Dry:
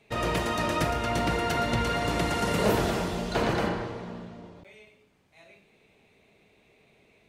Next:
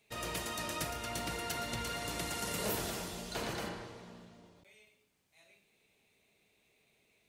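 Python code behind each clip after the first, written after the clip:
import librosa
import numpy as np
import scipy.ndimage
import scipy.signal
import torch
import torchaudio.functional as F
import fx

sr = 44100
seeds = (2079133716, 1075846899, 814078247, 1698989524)

y = F.preemphasis(torch.from_numpy(x), 0.8).numpy()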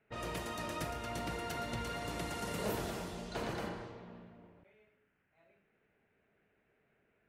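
y = fx.dmg_noise_band(x, sr, seeds[0], low_hz=1400.0, high_hz=3000.0, level_db=-73.0)
y = fx.high_shelf(y, sr, hz=2600.0, db=-10.0)
y = fx.env_lowpass(y, sr, base_hz=1400.0, full_db=-39.0)
y = y * librosa.db_to_amplitude(1.0)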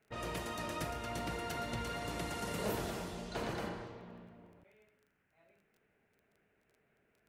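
y = fx.dmg_crackle(x, sr, seeds[1], per_s=17.0, level_db=-56.0)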